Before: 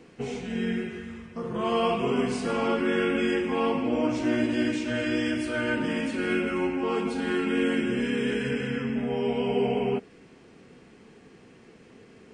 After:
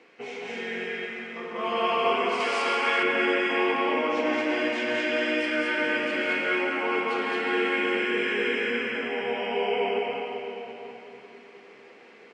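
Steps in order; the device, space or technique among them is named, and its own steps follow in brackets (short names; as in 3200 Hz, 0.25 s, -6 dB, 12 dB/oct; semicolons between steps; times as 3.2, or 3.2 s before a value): station announcement (BPF 490–4600 Hz; bell 2200 Hz +6 dB 0.39 oct; loudspeakers at several distances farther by 59 m -9 dB, 75 m -1 dB; reverb RT60 3.8 s, pre-delay 94 ms, DRR 2.5 dB); 2.4–3.03 tilt +2.5 dB/oct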